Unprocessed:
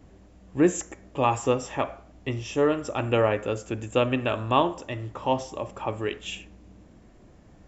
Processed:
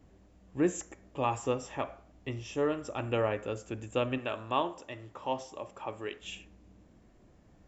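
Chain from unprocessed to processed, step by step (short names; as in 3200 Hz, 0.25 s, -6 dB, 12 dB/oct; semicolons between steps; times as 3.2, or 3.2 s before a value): 4.18–6.22 low shelf 190 Hz -10 dB; gain -7.5 dB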